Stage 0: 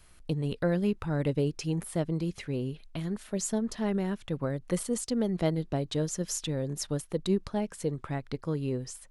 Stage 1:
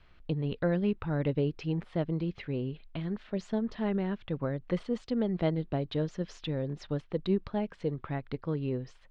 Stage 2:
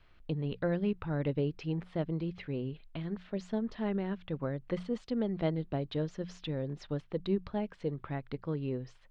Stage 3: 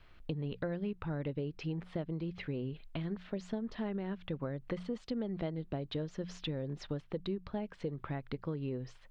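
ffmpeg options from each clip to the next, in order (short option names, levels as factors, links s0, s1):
-af "lowpass=f=3700:w=0.5412,lowpass=f=3700:w=1.3066,volume=0.891"
-af "bandreject=f=60:t=h:w=6,bandreject=f=120:t=h:w=6,bandreject=f=180:t=h:w=6,volume=0.75"
-af "acompressor=threshold=0.0141:ratio=5,volume=1.41"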